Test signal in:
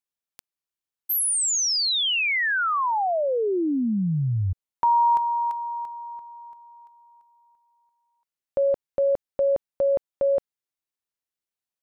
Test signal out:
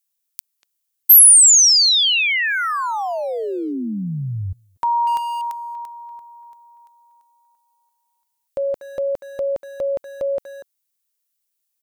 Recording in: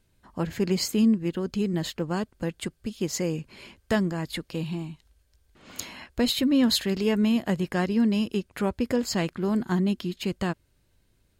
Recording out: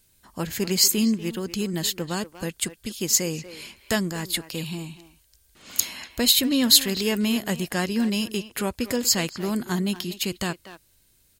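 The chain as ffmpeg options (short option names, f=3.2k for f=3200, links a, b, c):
-filter_complex "[0:a]asplit=2[a][b];[b]adelay=240,highpass=300,lowpass=3.4k,asoftclip=type=hard:threshold=-21.5dB,volume=-12dB[c];[a][c]amix=inputs=2:normalize=0,crystalizer=i=5:c=0,volume=-1.5dB"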